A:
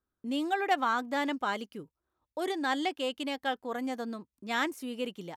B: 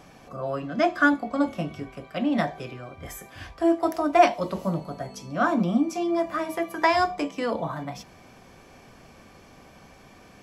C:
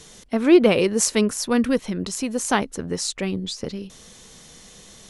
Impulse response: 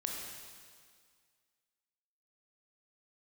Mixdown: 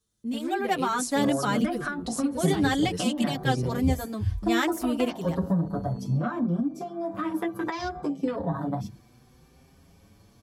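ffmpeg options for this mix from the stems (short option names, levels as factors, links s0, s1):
-filter_complex "[0:a]highshelf=f=5900:g=10,volume=0.841,asplit=2[s0][s1];[1:a]bandreject=f=630:w=12,afwtdn=0.0178,acompressor=threshold=0.0631:ratio=6,adelay=850,volume=1.06[s2];[2:a]agate=range=0.0501:threshold=0.00891:ratio=16:detection=peak,volume=0.266[s3];[s1]apad=whole_len=224750[s4];[s3][s4]sidechaincompress=threshold=0.0178:ratio=8:attack=16:release=153[s5];[s2][s5]amix=inputs=2:normalize=0,aexciter=amount=2.3:drive=5:freq=3500,acompressor=threshold=0.0224:ratio=6,volume=1[s6];[s0][s6]amix=inputs=2:normalize=0,equalizer=f=78:w=0.35:g=13.5,dynaudnorm=f=510:g=3:m=2,asplit=2[s7][s8];[s8]adelay=6.6,afreqshift=0.68[s9];[s7][s9]amix=inputs=2:normalize=1"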